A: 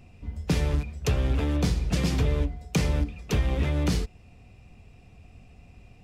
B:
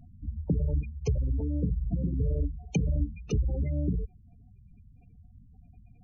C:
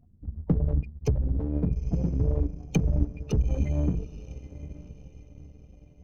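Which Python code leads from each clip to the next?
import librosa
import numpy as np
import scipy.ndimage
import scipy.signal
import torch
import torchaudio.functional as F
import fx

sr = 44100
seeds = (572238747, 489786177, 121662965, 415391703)

y1 = fx.spec_gate(x, sr, threshold_db=-15, keep='strong')
y1 = fx.rider(y1, sr, range_db=3, speed_s=0.5)
y1 = F.gain(torch.from_numpy(y1), -2.5).numpy()
y2 = np.where(y1 < 0.0, 10.0 ** (-3.0 / 20.0) * y1, y1)
y2 = fx.echo_diffused(y2, sr, ms=900, feedback_pct=53, wet_db=-12)
y2 = fx.power_curve(y2, sr, exponent=1.4)
y2 = F.gain(torch.from_numpy(y2), 6.5).numpy()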